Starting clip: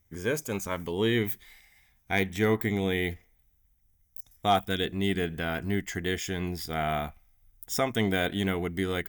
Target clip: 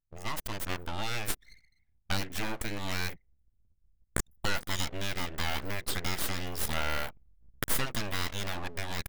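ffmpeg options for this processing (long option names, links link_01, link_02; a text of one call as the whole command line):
ffmpeg -i in.wav -filter_complex "[0:a]asplit=2[link_01][link_02];[link_02]asoftclip=type=tanh:threshold=-24.5dB,volume=-6dB[link_03];[link_01][link_03]amix=inputs=2:normalize=0,asettb=1/sr,asplit=3[link_04][link_05][link_06];[link_04]atrim=end=2.124[link_07];[link_05]atrim=start=2.12:end=2.79,asetpts=PTS-STARTPTS,afade=type=in:duration=0.004:curve=qsin,afade=type=out:start_time=0.666:duration=0.004:curve=qsin,lowshelf=frequency=100:gain=10.5[link_08];[link_06]atrim=start=2.786[link_09];[link_07][link_08]acrossfade=duration=0.004:curve1=hsin:curve2=qsin[link_10];[link_10][link_09]acrossfade=duration=0.004:curve1=qsin:curve2=hsin,dynaudnorm=framelen=330:gausssize=7:maxgain=17dB,anlmdn=6.31,acompressor=threshold=-24dB:ratio=5,lowshelf=frequency=470:gain=-9,aeval=exprs='abs(val(0))':channel_layout=same" out.wav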